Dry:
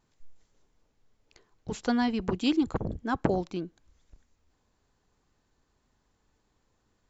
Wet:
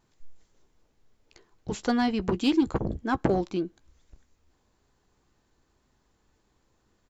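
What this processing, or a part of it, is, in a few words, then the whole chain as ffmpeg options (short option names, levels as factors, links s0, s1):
parallel distortion: -filter_complex "[0:a]equalizer=f=350:w=6.9:g=4,asplit=2[s0][s1];[s1]adelay=15,volume=0.224[s2];[s0][s2]amix=inputs=2:normalize=0,asplit=2[s3][s4];[s4]asoftclip=type=hard:threshold=0.0708,volume=0.596[s5];[s3][s5]amix=inputs=2:normalize=0,volume=0.841"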